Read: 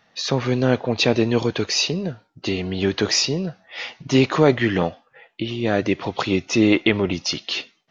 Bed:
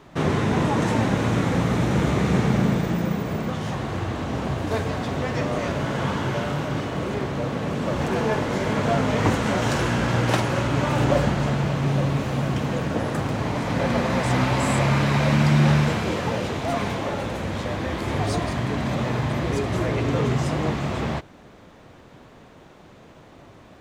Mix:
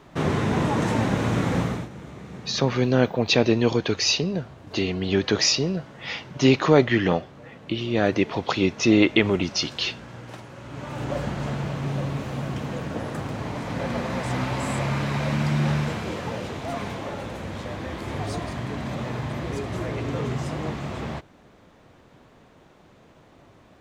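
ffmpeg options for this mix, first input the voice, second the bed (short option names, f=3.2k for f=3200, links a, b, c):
-filter_complex "[0:a]adelay=2300,volume=-1dB[a];[1:a]volume=12dB,afade=t=out:st=1.59:d=0.3:silence=0.133352,afade=t=in:st=10.58:d=0.91:silence=0.211349[b];[a][b]amix=inputs=2:normalize=0"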